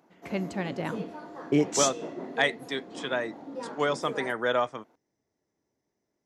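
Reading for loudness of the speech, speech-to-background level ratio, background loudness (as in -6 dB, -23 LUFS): -29.0 LUFS, 11.5 dB, -40.5 LUFS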